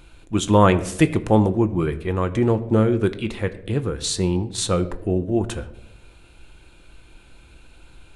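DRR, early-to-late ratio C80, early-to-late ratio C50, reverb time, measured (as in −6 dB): 9.5 dB, 17.5 dB, 15.5 dB, 0.95 s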